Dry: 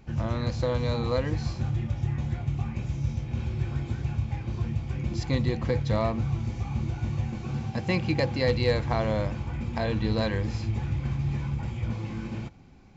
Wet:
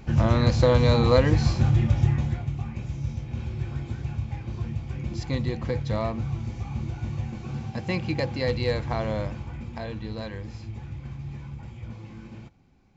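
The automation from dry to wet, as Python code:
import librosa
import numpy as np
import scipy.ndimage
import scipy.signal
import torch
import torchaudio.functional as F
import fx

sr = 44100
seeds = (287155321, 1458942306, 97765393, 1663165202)

y = fx.gain(x, sr, db=fx.line((2.02, 8.0), (2.54, -1.5), (9.24, -1.5), (10.06, -8.0)))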